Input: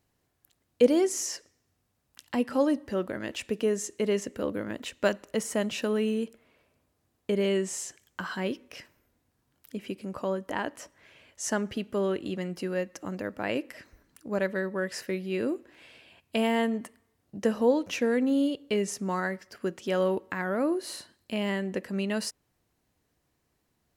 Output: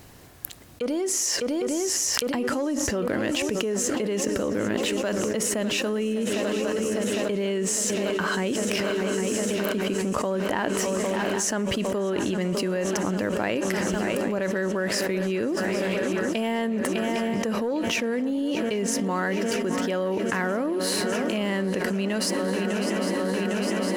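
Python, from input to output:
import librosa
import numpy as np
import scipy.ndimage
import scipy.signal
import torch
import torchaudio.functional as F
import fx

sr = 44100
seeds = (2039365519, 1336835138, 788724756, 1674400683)

p1 = fx.leveller(x, sr, passes=1)
p2 = p1 + fx.echo_swing(p1, sr, ms=805, ratio=3, feedback_pct=78, wet_db=-17.5, dry=0)
p3 = fx.env_flatten(p2, sr, amount_pct=100)
y = F.gain(torch.from_numpy(p3), -12.0).numpy()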